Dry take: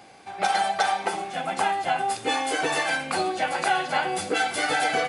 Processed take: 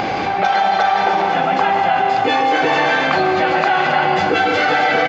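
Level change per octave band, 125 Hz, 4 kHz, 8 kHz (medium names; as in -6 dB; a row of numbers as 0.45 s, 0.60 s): +13.0 dB, +6.0 dB, no reading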